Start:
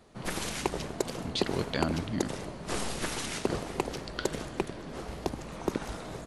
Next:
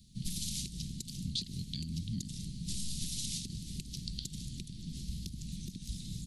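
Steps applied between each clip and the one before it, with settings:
downward compressor 6 to 1, threshold −34 dBFS, peak gain reduction 12.5 dB
Chebyshev band-stop filter 190–3,800 Hz, order 3
level +4.5 dB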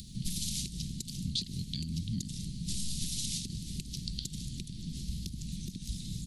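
upward compression, threshold −40 dBFS
level +2.5 dB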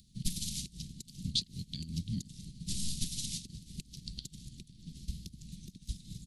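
expander for the loud parts 2.5 to 1, over −43 dBFS
level +4 dB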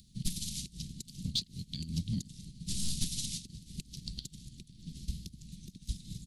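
in parallel at −9 dB: hard clipping −29.5 dBFS, distortion −12 dB
on the sum: amplitude tremolo 1 Hz, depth 34%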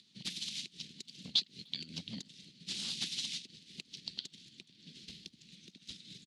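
band-pass filter 640–2,800 Hz
far-end echo of a speakerphone 300 ms, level −28 dB
level +10.5 dB

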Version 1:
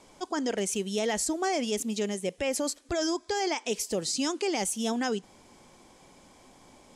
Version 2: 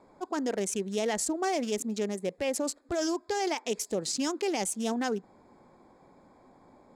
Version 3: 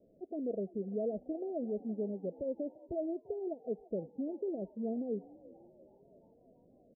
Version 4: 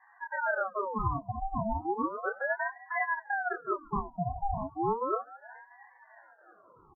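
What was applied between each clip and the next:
adaptive Wiener filter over 15 samples; low-shelf EQ 77 Hz −9.5 dB
Chebyshev low-pass with heavy ripple 670 Hz, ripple 3 dB; echo with shifted repeats 340 ms, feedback 61%, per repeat +54 Hz, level −21 dB; level −4 dB
expanding power law on the bin magnitudes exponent 2.4; double-tracking delay 27 ms −3.5 dB; ring modulator whose carrier an LFO sweeps 880 Hz, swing 55%, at 0.34 Hz; level +7 dB

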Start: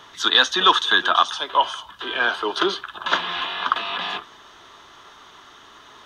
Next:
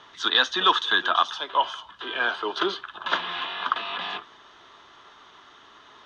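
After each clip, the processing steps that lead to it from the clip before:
low-pass filter 5,100 Hz 12 dB per octave
low-shelf EQ 110 Hz −5.5 dB
level −4 dB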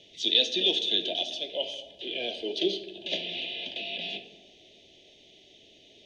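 elliptic band-stop filter 620–2,400 Hz, stop band 60 dB
on a send at −8 dB: convolution reverb RT60 1.5 s, pre-delay 3 ms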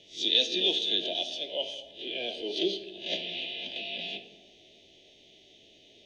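peak hold with a rise ahead of every peak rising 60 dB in 0.31 s
level −2.5 dB

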